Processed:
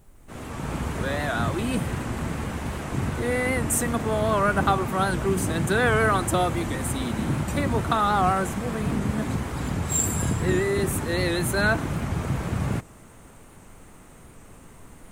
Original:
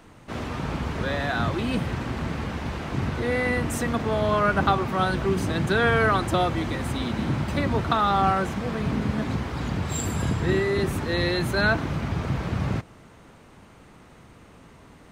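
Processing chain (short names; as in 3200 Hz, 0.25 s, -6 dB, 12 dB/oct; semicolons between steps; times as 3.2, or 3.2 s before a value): opening faded in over 0.78 s; added noise brown -50 dBFS; resonant high shelf 6400 Hz +9.5 dB, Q 1.5; record warp 78 rpm, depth 100 cents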